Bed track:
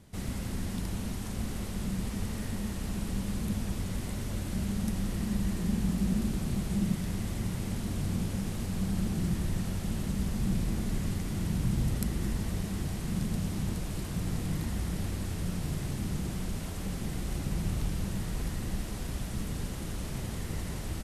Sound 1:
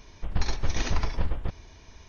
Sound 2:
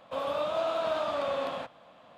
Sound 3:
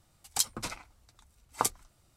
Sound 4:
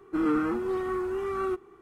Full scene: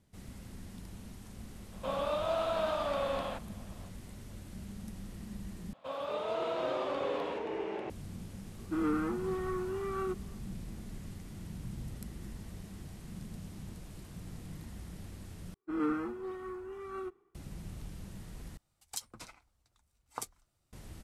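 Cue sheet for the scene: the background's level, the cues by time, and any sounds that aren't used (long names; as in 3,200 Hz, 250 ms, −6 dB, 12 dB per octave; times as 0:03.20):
bed track −13 dB
0:01.72: mix in 2 −2.5 dB
0:05.73: overwrite with 2 −6.5 dB + delay with pitch and tempo change per echo 210 ms, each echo −4 semitones, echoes 3
0:08.58: mix in 4 −6 dB
0:15.54: overwrite with 4 −9.5 dB + multiband upward and downward expander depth 100%
0:18.57: overwrite with 3 −12 dB
not used: 1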